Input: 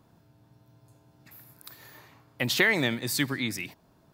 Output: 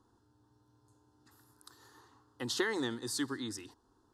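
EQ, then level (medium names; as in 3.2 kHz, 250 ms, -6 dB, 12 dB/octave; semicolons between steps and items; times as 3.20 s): low-pass 9.8 kHz 24 dB/octave; static phaser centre 620 Hz, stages 6; -4.0 dB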